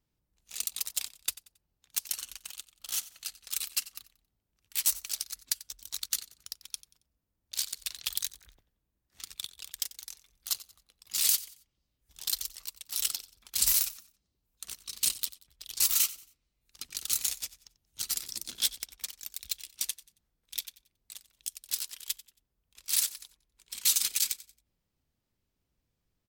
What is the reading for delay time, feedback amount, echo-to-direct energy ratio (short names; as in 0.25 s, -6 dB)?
91 ms, 33%, -17.5 dB